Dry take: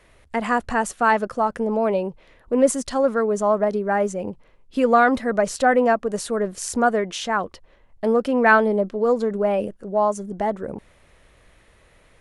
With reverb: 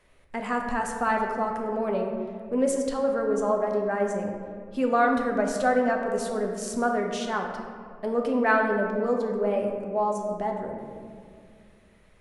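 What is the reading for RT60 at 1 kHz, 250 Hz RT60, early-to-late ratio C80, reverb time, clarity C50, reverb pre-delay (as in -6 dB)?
1.9 s, 3.0 s, 5.0 dB, 2.2 s, 4.0 dB, 5 ms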